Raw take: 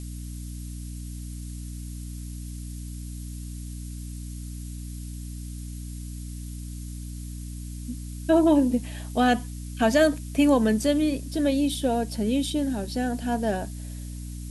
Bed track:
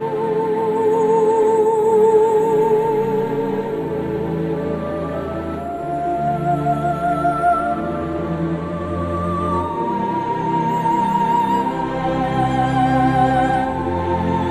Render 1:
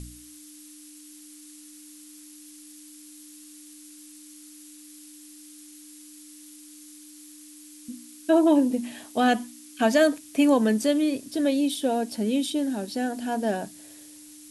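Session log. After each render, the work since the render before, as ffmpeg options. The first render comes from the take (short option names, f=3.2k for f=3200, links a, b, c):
-af "bandreject=f=60:t=h:w=4,bandreject=f=120:t=h:w=4,bandreject=f=180:t=h:w=4,bandreject=f=240:t=h:w=4"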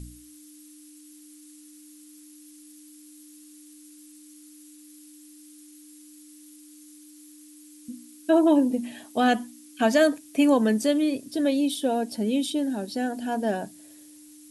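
-af "afftdn=nr=6:nf=-48"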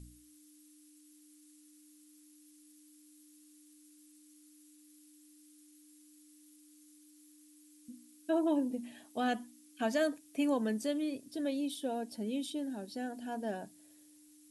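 -af "volume=-11.5dB"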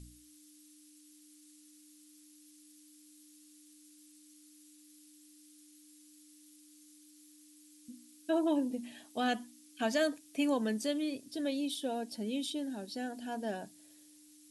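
-af "equalizer=f=4.3k:t=o:w=2:g=5.5"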